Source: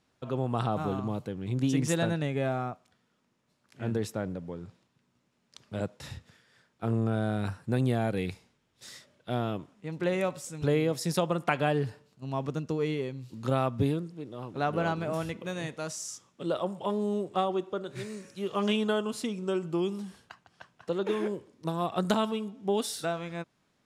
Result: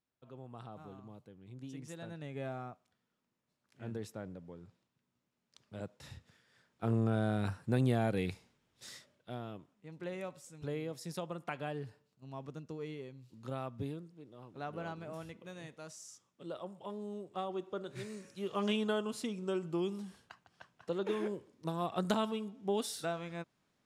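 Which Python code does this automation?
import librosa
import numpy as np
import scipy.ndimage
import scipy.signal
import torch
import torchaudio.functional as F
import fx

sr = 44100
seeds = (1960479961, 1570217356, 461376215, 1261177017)

y = fx.gain(x, sr, db=fx.line((1.98, -19.5), (2.4, -11.0), (5.76, -11.0), (6.9, -3.0), (8.93, -3.0), (9.39, -13.0), (17.26, -13.0), (17.82, -5.5)))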